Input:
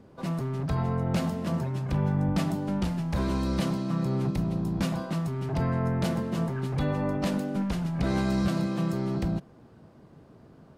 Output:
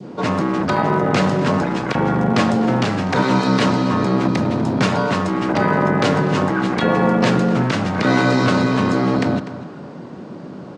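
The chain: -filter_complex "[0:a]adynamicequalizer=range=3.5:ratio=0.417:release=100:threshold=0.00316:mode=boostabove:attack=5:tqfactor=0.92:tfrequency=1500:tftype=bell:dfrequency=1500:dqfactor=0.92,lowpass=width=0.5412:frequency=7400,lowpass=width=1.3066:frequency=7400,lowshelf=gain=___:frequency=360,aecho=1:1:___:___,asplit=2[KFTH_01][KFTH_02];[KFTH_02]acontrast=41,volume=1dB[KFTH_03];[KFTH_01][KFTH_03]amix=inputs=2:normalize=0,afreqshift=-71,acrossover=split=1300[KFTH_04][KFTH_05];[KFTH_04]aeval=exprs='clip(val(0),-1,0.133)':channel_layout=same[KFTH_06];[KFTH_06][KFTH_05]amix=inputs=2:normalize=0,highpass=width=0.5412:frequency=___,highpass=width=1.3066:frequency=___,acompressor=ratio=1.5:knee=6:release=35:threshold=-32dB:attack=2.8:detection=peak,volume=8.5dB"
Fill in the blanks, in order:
8.5, 247, 0.1, 170, 170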